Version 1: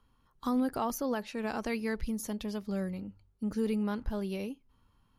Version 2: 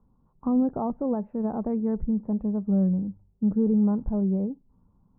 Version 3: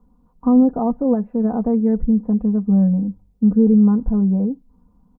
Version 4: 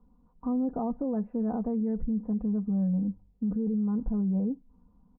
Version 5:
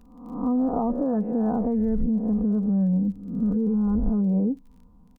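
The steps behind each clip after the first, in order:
inverse Chebyshev low-pass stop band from 5.1 kHz, stop band 80 dB; peaking EQ 180 Hz +10 dB 0.61 oct; trim +4 dB
comb 4.1 ms, depth 85%; trim +4.5 dB
peak limiter -17.5 dBFS, peak gain reduction 11.5 dB; distance through air 140 m; trim -5.5 dB
reverse spectral sustain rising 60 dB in 0.76 s; crackle 23 per s -53 dBFS; trim +5 dB

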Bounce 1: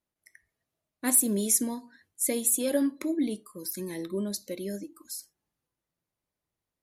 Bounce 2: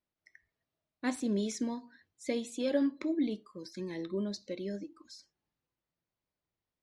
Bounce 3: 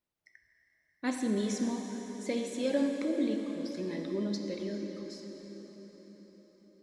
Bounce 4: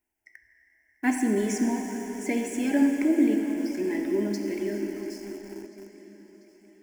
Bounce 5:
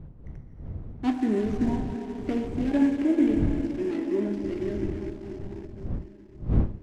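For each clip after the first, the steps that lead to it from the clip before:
low-pass 5.2 kHz 24 dB/octave; trim -3 dB
reverberation RT60 5.4 s, pre-delay 7 ms, DRR 2.5 dB
in parallel at -11.5 dB: bit crusher 7-bit; on the sum: static phaser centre 790 Hz, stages 8; thinning echo 691 ms, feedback 64%, high-pass 400 Hz, level -20.5 dB; trim +8 dB
median filter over 25 samples; wind noise 120 Hz -33 dBFS; distance through air 59 m

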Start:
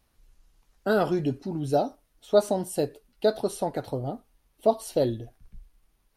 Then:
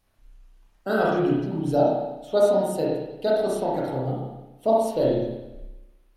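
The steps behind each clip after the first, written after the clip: hum notches 60/120/180/240/300/360/420 Hz; spring tank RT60 1 s, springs 31/59 ms, chirp 50 ms, DRR -5 dB; trim -2.5 dB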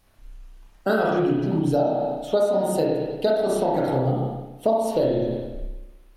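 compression 6:1, threshold -26 dBFS, peak gain reduction 12 dB; trim +8 dB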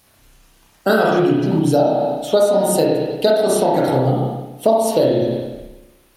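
high-pass 84 Hz 12 dB/octave; treble shelf 3.5 kHz +8 dB; trim +6 dB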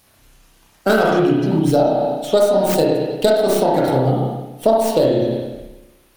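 tracing distortion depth 0.13 ms

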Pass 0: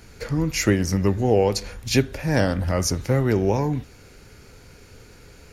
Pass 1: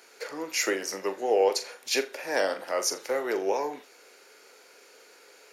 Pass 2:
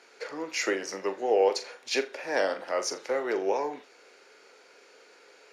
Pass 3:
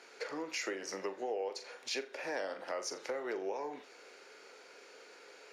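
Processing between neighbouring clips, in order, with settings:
high-pass 410 Hz 24 dB/octave; flutter echo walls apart 7.1 m, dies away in 0.23 s; trim -2.5 dB
distance through air 78 m
compression 4:1, threshold -37 dBFS, peak gain reduction 16 dB

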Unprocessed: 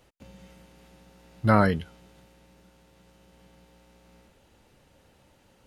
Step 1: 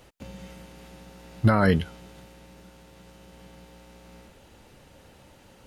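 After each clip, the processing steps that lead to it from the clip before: peak limiter -16 dBFS, peak gain reduction 11 dB; trim +7.5 dB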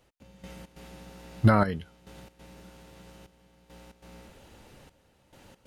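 trance gate "....xx.xxxxxxxx" 138 bpm -12 dB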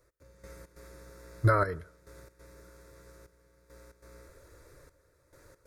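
static phaser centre 800 Hz, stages 6; on a send at -23 dB: reverberation RT60 0.65 s, pre-delay 47 ms

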